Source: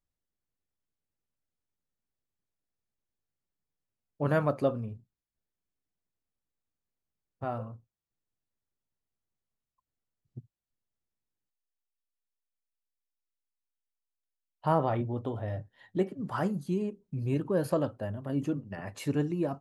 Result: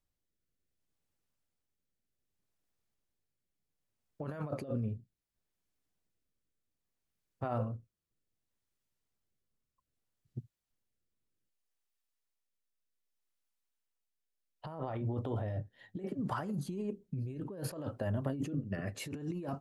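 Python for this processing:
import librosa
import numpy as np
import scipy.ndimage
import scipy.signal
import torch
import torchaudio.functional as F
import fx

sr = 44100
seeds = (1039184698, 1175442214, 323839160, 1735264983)

y = fx.over_compress(x, sr, threshold_db=-36.0, ratio=-1.0)
y = fx.rotary(y, sr, hz=0.65)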